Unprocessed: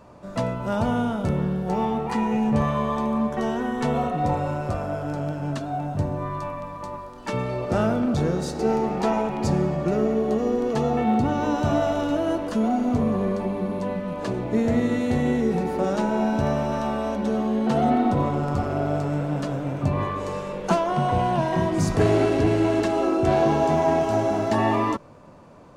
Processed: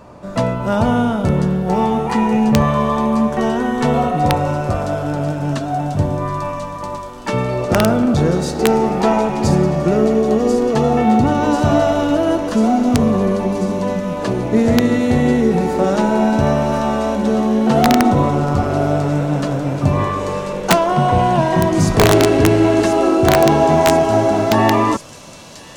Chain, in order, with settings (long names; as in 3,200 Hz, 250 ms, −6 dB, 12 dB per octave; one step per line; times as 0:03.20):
delay with a high-pass on its return 1,041 ms, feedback 76%, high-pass 4,700 Hz, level −5 dB
wrap-around overflow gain 10.5 dB
level +8 dB